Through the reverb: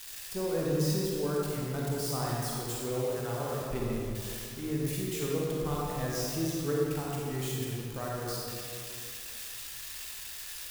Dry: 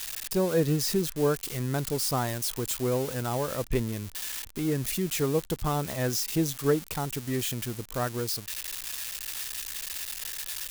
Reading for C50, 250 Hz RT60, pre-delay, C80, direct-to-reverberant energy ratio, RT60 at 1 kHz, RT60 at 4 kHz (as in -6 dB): -3.0 dB, 2.6 s, 32 ms, -1.0 dB, -4.5 dB, 2.3 s, 1.6 s